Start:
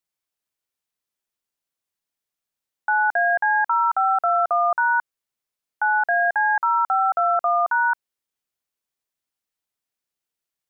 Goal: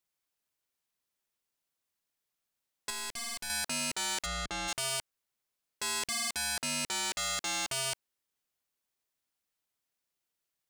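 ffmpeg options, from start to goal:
ffmpeg -i in.wav -filter_complex "[0:a]aeval=exprs='0.0376*(abs(mod(val(0)/0.0376+3,4)-2)-1)':channel_layout=same,asettb=1/sr,asplit=3[link_01][link_02][link_03];[link_01]atrim=end=2.904[link_04];[link_02]atrim=start=2.9:end=3.5,asetpts=PTS-STARTPTS,afade=type=in:duration=0.004:curve=qsin,afade=type=out:start_time=0.596:duration=0.004:curve=qsin,aeval=exprs='(tanh(63.1*val(0)+0.45)-tanh(0.45))/63.1':channel_layout=same[link_05];[link_03]atrim=start=3.496[link_06];[link_04][link_05]acrossfade=duration=0.004:curve1=hsin:curve2=qsin[link_07];[link_07][link_06]acrossfade=duration=0.004:curve1=qsin:curve2=hsin,asplit=3[link_08][link_09][link_10];[link_08]afade=type=out:start_time=4.25:duration=0.02[link_11];[link_09]aemphasis=mode=reproduction:type=bsi,afade=type=in:start_time=4.25:duration=0.02,afade=type=out:start_time=4.67:duration=0.02[link_12];[link_10]afade=type=in:start_time=4.67:duration=0.02[link_13];[link_11][link_12][link_13]amix=inputs=3:normalize=0" out.wav

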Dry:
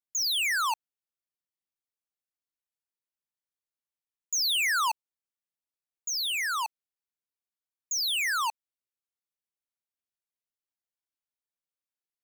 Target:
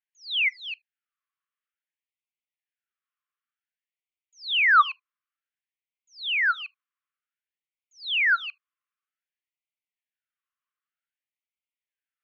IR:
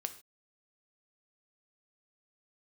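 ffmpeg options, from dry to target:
-filter_complex "[0:a]equalizer=frequency=1100:width_type=o:width=1.1:gain=11.5,asplit=2[link_01][link_02];[1:a]atrim=start_sample=2205,atrim=end_sample=3528[link_03];[link_02][link_03]afir=irnorm=-1:irlink=0,volume=-13dB[link_04];[link_01][link_04]amix=inputs=2:normalize=0,highpass=frequency=460:width_type=q:width=0.5412,highpass=frequency=460:width_type=q:width=1.307,lowpass=frequency=3300:width_type=q:width=0.5176,lowpass=frequency=3300:width_type=q:width=0.7071,lowpass=frequency=3300:width_type=q:width=1.932,afreqshift=-90,afftfilt=real='re*gte(b*sr/1024,990*pow(2000/990,0.5+0.5*sin(2*PI*0.54*pts/sr)))':imag='im*gte(b*sr/1024,990*pow(2000/990,0.5+0.5*sin(2*PI*0.54*pts/sr)))':win_size=1024:overlap=0.75,volume=2.5dB"

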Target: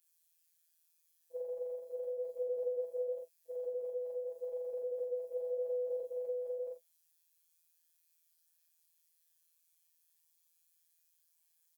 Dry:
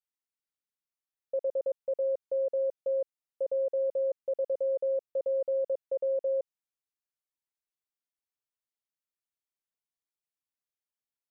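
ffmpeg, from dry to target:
ffmpeg -i in.wav -filter_complex "[0:a]afftfilt=real='re':imag='-im':win_size=4096:overlap=0.75,equalizer=frequency=260:width_type=o:width=1:gain=-13.5,alimiter=level_in=11dB:limit=-24dB:level=0:latency=1:release=84,volume=-11dB,bandreject=frequency=50:width_type=h:width=6,bandreject=frequency=100:width_type=h:width=6,bandreject=frequency=150:width_type=h:width=6,bandreject=frequency=200:width_type=h:width=6,bandreject=frequency=250:width_type=h:width=6,flanger=delay=5.8:depth=8.8:regen=-57:speed=0.89:shape=sinusoidal,crystalizer=i=8.5:c=0,aphaser=in_gain=1:out_gain=1:delay=1.1:decay=0.2:speed=0.36:type=triangular,afftfilt=real='hypot(re,im)*cos(PI*b)':imag='0':win_size=1024:overlap=0.75,asplit=2[link_01][link_02];[link_02]adelay=36,volume=-4dB[link_03];[link_01][link_03]amix=inputs=2:normalize=0,asetrate=42336,aresample=44100,volume=8.5dB" out.wav

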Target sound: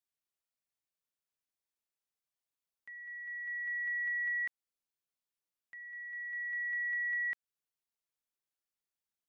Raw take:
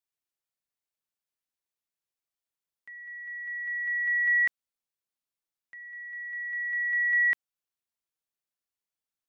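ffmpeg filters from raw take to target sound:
ffmpeg -i in.wav -af "acompressor=threshold=-30dB:ratio=6,volume=-3.5dB" out.wav

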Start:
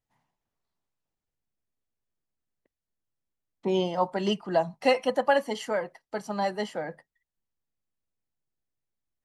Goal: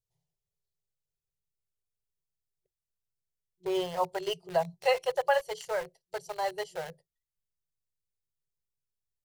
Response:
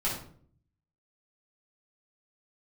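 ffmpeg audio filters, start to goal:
-filter_complex "[0:a]acrossover=split=530|3400[link_01][link_02][link_03];[link_02]aeval=exprs='val(0)*gte(abs(val(0)),0.0158)':channel_layout=same[link_04];[link_01][link_04][link_03]amix=inputs=3:normalize=0,afftfilt=real='re*(1-between(b*sr/4096,180,360))':imag='im*(1-between(b*sr/4096,180,360))':win_size=4096:overlap=0.75,volume=-3dB"

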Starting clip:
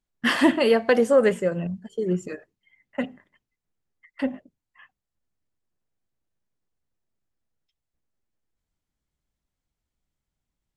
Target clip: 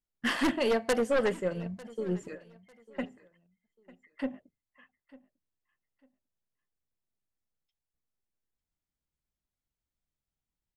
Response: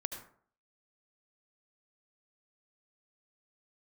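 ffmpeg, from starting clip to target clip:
-af "aeval=exprs='0.422*(cos(1*acos(clip(val(0)/0.422,-1,1)))-cos(1*PI/2))+0.0841*(cos(2*acos(clip(val(0)/0.422,-1,1)))-cos(2*PI/2))+0.119*(cos(3*acos(clip(val(0)/0.422,-1,1)))-cos(3*PI/2))+0.188*(cos(5*acos(clip(val(0)/0.422,-1,1)))-cos(5*PI/2))+0.0841*(cos(7*acos(clip(val(0)/0.422,-1,1)))-cos(7*PI/2))':channel_layout=same,aecho=1:1:898|1796:0.0891|0.0223,volume=-8.5dB"

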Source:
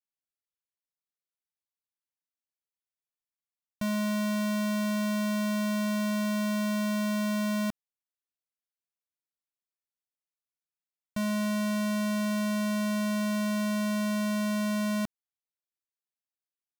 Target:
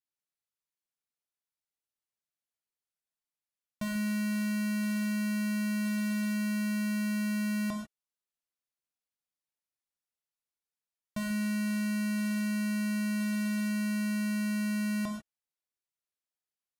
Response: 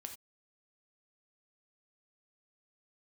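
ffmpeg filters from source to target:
-filter_complex "[1:a]atrim=start_sample=2205,afade=type=out:start_time=0.14:duration=0.01,atrim=end_sample=6615,asetrate=26019,aresample=44100[link_01];[0:a][link_01]afir=irnorm=-1:irlink=0"

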